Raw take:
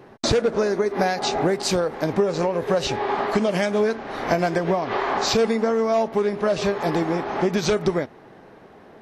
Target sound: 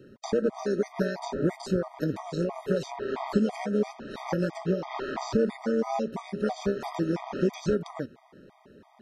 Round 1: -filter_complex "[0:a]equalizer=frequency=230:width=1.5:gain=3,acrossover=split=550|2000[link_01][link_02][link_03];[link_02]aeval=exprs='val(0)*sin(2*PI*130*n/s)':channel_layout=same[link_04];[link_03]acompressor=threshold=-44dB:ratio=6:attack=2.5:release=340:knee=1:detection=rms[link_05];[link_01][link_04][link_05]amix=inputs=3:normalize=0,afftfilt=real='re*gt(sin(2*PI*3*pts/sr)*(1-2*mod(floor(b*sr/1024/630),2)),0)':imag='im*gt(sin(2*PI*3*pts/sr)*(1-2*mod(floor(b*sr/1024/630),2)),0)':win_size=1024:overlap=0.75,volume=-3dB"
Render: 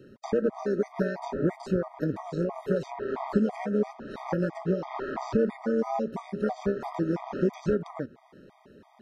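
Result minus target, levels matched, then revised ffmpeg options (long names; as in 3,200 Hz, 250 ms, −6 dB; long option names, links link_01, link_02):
downward compressor: peak gain reduction +9 dB
-filter_complex "[0:a]equalizer=frequency=230:width=1.5:gain=3,acrossover=split=550|2000[link_01][link_02][link_03];[link_02]aeval=exprs='val(0)*sin(2*PI*130*n/s)':channel_layout=same[link_04];[link_03]acompressor=threshold=-33dB:ratio=6:attack=2.5:release=340:knee=1:detection=rms[link_05];[link_01][link_04][link_05]amix=inputs=3:normalize=0,afftfilt=real='re*gt(sin(2*PI*3*pts/sr)*(1-2*mod(floor(b*sr/1024/630),2)),0)':imag='im*gt(sin(2*PI*3*pts/sr)*(1-2*mod(floor(b*sr/1024/630),2)),0)':win_size=1024:overlap=0.75,volume=-3dB"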